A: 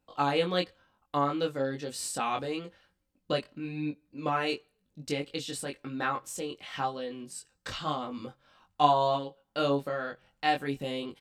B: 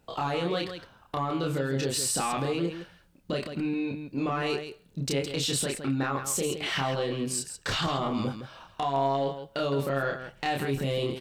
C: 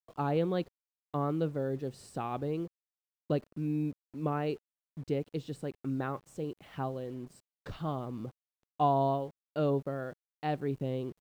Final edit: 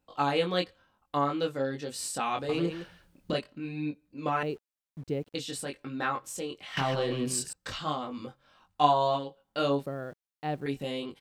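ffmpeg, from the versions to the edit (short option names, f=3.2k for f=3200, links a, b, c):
-filter_complex "[1:a]asplit=2[a][b];[2:a]asplit=2[c][d];[0:a]asplit=5[e][f][g][h][i];[e]atrim=end=2.492[j];[a]atrim=start=2.488:end=3.352[k];[f]atrim=start=3.348:end=4.432[l];[c]atrim=start=4.428:end=5.352[m];[g]atrim=start=5.348:end=6.772[n];[b]atrim=start=6.768:end=7.532[o];[h]atrim=start=7.528:end=9.862[p];[d]atrim=start=9.858:end=10.662[q];[i]atrim=start=10.658[r];[j][k]acrossfade=d=0.004:c1=hsin:c2=hsin[s];[s][l]acrossfade=d=0.004:c1=hsin:c2=hsin[t];[t][m]acrossfade=d=0.004:c1=hsin:c2=hsin[u];[u][n]acrossfade=d=0.004:c1=hsin:c2=hsin[v];[v][o]acrossfade=d=0.004:c1=hsin:c2=hsin[w];[w][p]acrossfade=d=0.004:c1=hsin:c2=hsin[x];[x][q]acrossfade=d=0.004:c1=hsin:c2=hsin[y];[y][r]acrossfade=d=0.004:c1=hsin:c2=hsin"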